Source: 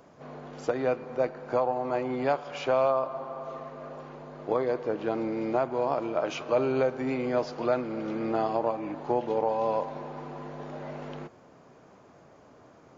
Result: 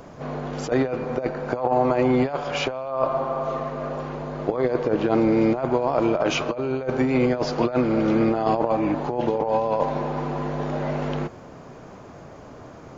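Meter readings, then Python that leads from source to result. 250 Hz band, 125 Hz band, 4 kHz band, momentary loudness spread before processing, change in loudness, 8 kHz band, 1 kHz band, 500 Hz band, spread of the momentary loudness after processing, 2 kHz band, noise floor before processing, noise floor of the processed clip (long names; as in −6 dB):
+10.5 dB, +12.0 dB, +10.0 dB, 14 LU, +6.0 dB, can't be measured, +5.0 dB, +5.0 dB, 18 LU, +7.0 dB, −55 dBFS, −43 dBFS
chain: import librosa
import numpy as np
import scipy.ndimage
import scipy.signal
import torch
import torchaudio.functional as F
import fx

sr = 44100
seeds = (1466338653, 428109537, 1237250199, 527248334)

y = fx.low_shelf(x, sr, hz=94.0, db=12.0)
y = fx.over_compress(y, sr, threshold_db=-29.0, ratio=-0.5)
y = y * 10.0 ** (8.5 / 20.0)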